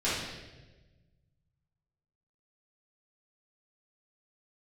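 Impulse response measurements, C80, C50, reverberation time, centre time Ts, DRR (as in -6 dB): 3.0 dB, -0.5 dB, 1.2 s, 77 ms, -11.5 dB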